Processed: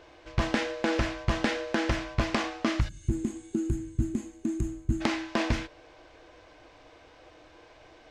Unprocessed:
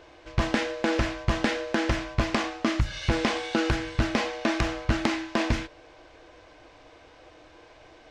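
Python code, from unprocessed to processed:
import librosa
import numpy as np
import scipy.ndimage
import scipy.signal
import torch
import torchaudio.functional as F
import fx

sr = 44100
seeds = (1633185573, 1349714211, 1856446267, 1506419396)

y = fx.spec_box(x, sr, start_s=2.89, length_s=2.12, low_hz=400.0, high_hz=6300.0, gain_db=-24)
y = y * 10.0 ** (-2.0 / 20.0)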